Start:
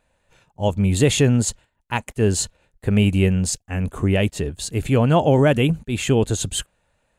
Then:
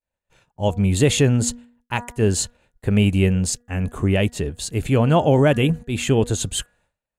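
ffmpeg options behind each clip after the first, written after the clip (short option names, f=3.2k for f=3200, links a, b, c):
-af "bandreject=f=240.1:t=h:w=4,bandreject=f=480.2:t=h:w=4,bandreject=f=720.3:t=h:w=4,bandreject=f=960.4:t=h:w=4,bandreject=f=1.2005k:t=h:w=4,bandreject=f=1.4406k:t=h:w=4,bandreject=f=1.6807k:t=h:w=4,bandreject=f=1.9208k:t=h:w=4,agate=range=-33dB:threshold=-53dB:ratio=3:detection=peak"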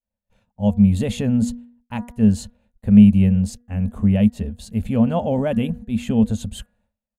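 -af "firequalizer=gain_entry='entry(100,0);entry(150,-14);entry(210,12);entry(320,-19);entry(510,-4);entry(1300,-12);entry(3700,-11);entry(7500,-16);entry(12000,-9)':delay=0.05:min_phase=1,volume=1dB"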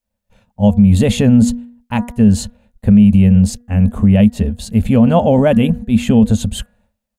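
-af "alimiter=level_in=11dB:limit=-1dB:release=50:level=0:latency=1,volume=-1dB"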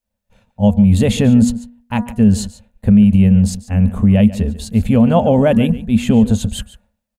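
-af "aecho=1:1:143:0.15,volume=-1dB"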